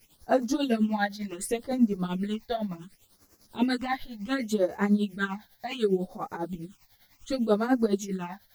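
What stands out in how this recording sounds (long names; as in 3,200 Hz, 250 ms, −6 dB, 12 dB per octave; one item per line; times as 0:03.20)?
a quantiser's noise floor 10 bits, dither triangular
phaser sweep stages 8, 0.68 Hz, lowest notch 340–3,300 Hz
tremolo triangle 10 Hz, depth 85%
a shimmering, thickened sound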